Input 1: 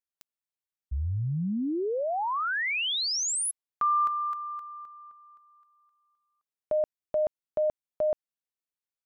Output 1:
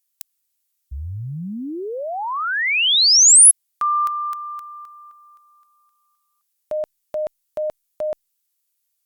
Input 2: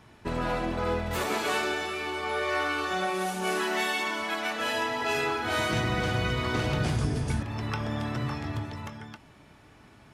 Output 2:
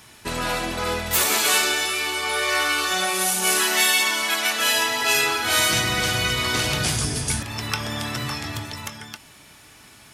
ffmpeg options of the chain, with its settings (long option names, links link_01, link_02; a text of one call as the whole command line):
ffmpeg -i in.wav -af "crystalizer=i=8.5:c=0" -ar 48000 -c:a libopus -b:a 256k out.opus